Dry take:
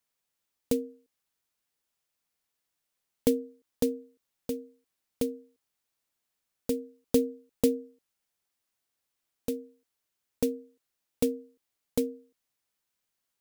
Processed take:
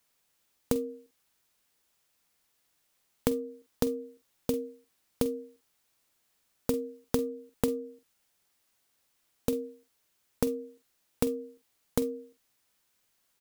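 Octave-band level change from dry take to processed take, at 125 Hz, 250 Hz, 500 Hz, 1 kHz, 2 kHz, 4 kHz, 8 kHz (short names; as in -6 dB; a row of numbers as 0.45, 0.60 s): +4.0, -2.0, -1.0, +7.5, +4.0, -0.5, -0.5 dB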